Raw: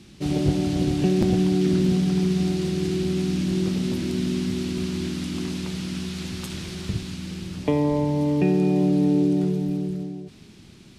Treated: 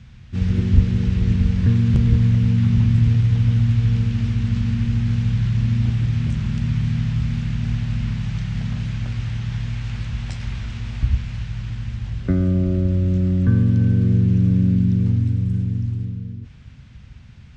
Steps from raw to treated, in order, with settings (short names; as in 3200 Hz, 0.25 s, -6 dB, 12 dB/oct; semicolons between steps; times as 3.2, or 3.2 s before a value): bell 85 Hz +13.5 dB 2.8 oct; wide varispeed 0.625×; gain -3 dB